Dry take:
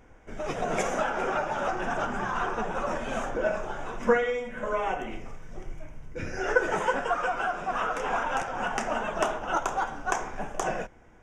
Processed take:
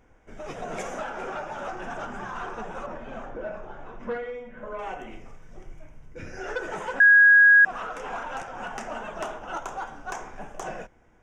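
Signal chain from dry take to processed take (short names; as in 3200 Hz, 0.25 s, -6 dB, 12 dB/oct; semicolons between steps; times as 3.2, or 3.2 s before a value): soft clip -18.5 dBFS, distortion -16 dB; 2.86–4.79 tape spacing loss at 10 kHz 23 dB; 7–7.65 bleep 1650 Hz -6.5 dBFS; gain -4.5 dB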